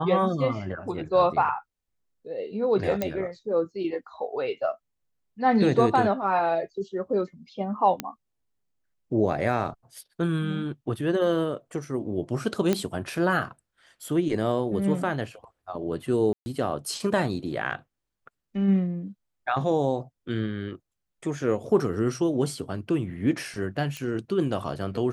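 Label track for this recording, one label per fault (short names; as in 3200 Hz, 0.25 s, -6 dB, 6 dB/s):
3.020000	3.020000	pop -13 dBFS
8.000000	8.000000	pop -11 dBFS
12.730000	12.730000	pop -10 dBFS
16.330000	16.460000	gap 0.13 s
23.970000	23.970000	pop -20 dBFS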